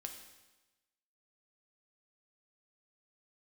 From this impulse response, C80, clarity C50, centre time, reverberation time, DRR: 9.0 dB, 7.0 dB, 26 ms, 1.1 s, 3.5 dB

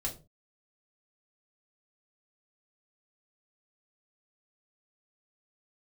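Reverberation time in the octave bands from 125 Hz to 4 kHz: 0.40, 0.35, 0.35, 0.30, 0.25, 0.20 seconds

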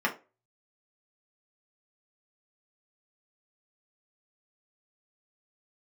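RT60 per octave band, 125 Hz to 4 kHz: 0.30, 0.30, 0.35, 0.25, 0.25, 0.20 seconds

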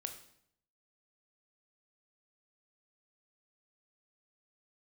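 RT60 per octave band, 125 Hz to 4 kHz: 0.90, 0.75, 0.70, 0.65, 0.65, 0.60 seconds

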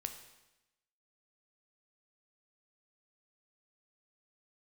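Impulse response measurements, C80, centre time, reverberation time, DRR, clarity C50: 11.0 dB, 17 ms, 0.95 s, 6.0 dB, 9.0 dB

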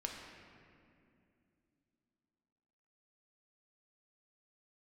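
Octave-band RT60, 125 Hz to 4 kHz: 3.3, 3.8, 2.9, 2.2, 2.2, 1.5 seconds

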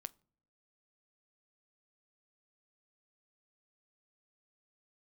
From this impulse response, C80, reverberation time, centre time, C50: 31.0 dB, non-exponential decay, 2 ms, 26.0 dB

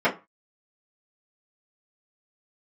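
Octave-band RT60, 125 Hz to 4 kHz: 0.35, 0.25, 0.25, 0.30, 0.25, 0.20 seconds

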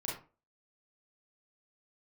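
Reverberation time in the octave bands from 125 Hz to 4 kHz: 0.35, 0.35, 0.35, 0.35, 0.30, 0.20 seconds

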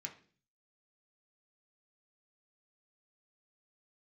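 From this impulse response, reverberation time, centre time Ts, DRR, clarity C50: 0.45 s, 12 ms, 0.5 dB, 12.5 dB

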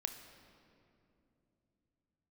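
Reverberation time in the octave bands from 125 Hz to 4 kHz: can't be measured, 4.2 s, 3.3 s, 2.5 s, 2.1 s, 1.6 s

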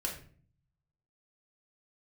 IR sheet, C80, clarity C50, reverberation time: 11.5 dB, 7.5 dB, 0.45 s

